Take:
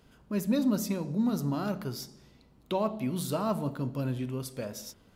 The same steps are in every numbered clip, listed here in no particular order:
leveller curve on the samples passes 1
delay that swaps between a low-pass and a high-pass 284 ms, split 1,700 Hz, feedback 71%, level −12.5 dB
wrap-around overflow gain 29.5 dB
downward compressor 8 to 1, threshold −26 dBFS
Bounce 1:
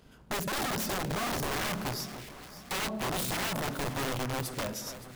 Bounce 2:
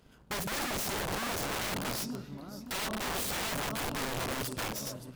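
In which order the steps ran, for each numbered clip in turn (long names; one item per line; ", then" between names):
downward compressor, then wrap-around overflow, then delay that swaps between a low-pass and a high-pass, then leveller curve on the samples
delay that swaps between a low-pass and a high-pass, then leveller curve on the samples, then downward compressor, then wrap-around overflow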